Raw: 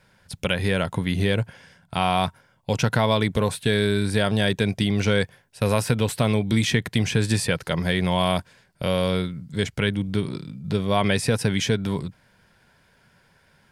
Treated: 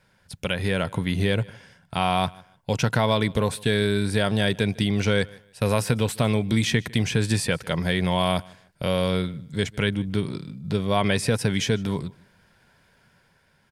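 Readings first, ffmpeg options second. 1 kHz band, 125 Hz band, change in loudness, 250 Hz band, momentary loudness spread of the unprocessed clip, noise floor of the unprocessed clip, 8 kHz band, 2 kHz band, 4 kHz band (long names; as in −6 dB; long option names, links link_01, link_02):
−1.0 dB, −1.0 dB, −1.0 dB, −1.0 dB, 8 LU, −61 dBFS, −1.0 dB, −1.0 dB, −1.0 dB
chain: -filter_complex "[0:a]dynaudnorm=framelen=100:gausssize=13:maxgain=3dB,asplit=2[link_01][link_02];[link_02]aecho=0:1:152|304:0.0631|0.0151[link_03];[link_01][link_03]amix=inputs=2:normalize=0,volume=-3.5dB"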